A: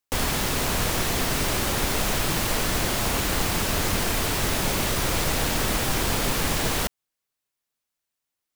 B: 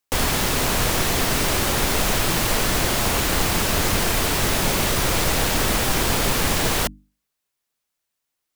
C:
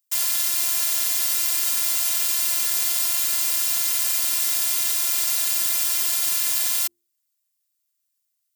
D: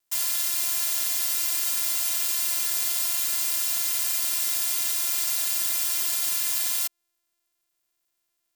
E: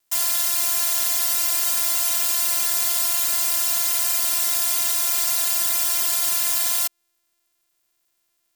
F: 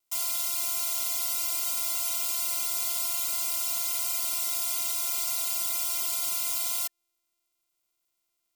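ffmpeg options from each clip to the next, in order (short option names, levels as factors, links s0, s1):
-af "bandreject=f=50:t=h:w=6,bandreject=f=100:t=h:w=6,bandreject=f=150:t=h:w=6,bandreject=f=200:t=h:w=6,bandreject=f=250:t=h:w=6,bandreject=f=300:t=h:w=6,volume=1.58"
-af "afftfilt=real='hypot(re,im)*cos(PI*b)':imag='0':win_size=512:overlap=0.75,aderivative,volume=1.78"
-filter_complex "[0:a]acrossover=split=170|1200[s0][s1][s2];[s1]acompressor=mode=upward:threshold=0.00251:ratio=2.5[s3];[s0][s3][s2]amix=inputs=3:normalize=0,acrusher=bits=9:mix=0:aa=0.000001,volume=0.668"
-af "acontrast=59"
-af "asuperstop=centerf=1700:order=12:qfactor=7.7,volume=0.398"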